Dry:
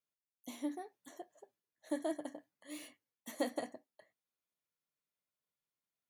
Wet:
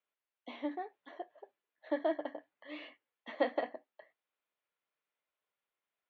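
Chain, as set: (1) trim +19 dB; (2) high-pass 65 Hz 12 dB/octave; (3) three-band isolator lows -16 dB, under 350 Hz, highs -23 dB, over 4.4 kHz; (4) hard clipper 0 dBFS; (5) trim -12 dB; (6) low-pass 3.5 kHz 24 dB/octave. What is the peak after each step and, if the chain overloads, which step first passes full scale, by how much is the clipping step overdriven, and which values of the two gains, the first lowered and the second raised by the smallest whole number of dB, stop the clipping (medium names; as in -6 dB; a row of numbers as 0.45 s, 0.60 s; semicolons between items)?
-3.5 dBFS, -3.5 dBFS, -5.5 dBFS, -5.5 dBFS, -17.5 dBFS, -17.5 dBFS; nothing clips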